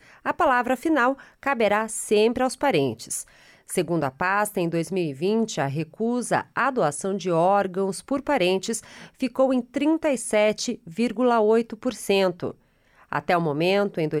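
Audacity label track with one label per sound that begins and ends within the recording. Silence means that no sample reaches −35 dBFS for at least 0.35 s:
3.690000	12.510000	sound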